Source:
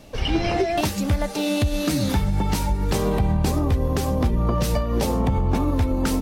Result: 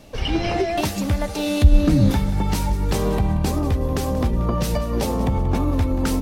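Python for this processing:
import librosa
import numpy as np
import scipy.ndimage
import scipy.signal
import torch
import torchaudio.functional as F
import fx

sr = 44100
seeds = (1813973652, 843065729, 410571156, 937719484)

y = fx.tilt_eq(x, sr, slope=-3.0, at=(1.64, 2.11))
y = fx.echo_feedback(y, sr, ms=183, feedback_pct=31, wet_db=-15)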